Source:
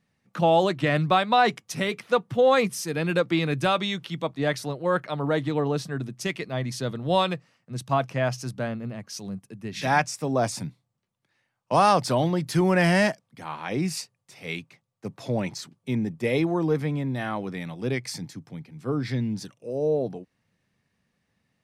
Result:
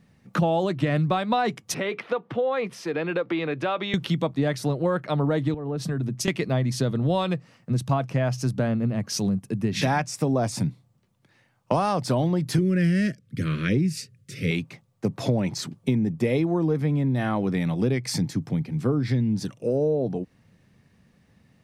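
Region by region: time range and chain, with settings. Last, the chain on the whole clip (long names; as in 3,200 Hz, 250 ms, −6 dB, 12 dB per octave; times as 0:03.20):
0:01.74–0:03.94: downward compressor 2.5 to 1, threshold −34 dBFS + three-way crossover with the lows and the highs turned down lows −17 dB, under 320 Hz, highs −22 dB, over 3,800 Hz
0:05.54–0:06.28: downward compressor 10 to 1, threshold −36 dBFS + multiband upward and downward expander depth 70%
0:12.58–0:14.51: Chebyshev band-stop filter 440–1,600 Hz + parametric band 99 Hz +8.5 dB 1.9 octaves
whole clip: low-shelf EQ 490 Hz +8.5 dB; downward compressor 6 to 1, threshold −29 dBFS; level +8 dB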